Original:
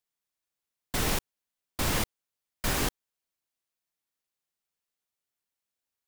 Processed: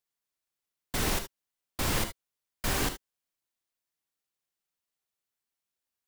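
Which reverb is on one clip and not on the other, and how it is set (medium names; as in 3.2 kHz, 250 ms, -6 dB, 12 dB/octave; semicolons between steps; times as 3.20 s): gated-style reverb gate 90 ms rising, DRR 8 dB; trim -1.5 dB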